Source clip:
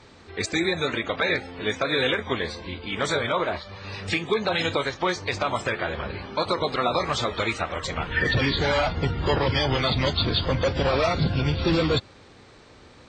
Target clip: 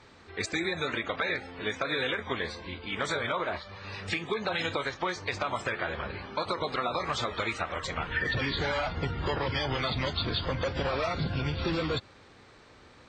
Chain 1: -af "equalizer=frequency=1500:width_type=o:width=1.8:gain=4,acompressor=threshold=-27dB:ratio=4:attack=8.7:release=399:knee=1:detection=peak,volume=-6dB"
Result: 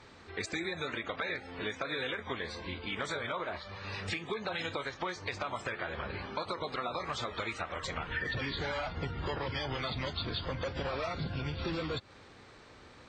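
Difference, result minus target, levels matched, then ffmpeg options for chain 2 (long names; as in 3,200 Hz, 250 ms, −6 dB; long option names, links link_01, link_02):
downward compressor: peak gain reduction +5.5 dB
-af "equalizer=frequency=1500:width_type=o:width=1.8:gain=4,acompressor=threshold=-19.5dB:ratio=4:attack=8.7:release=399:knee=1:detection=peak,volume=-6dB"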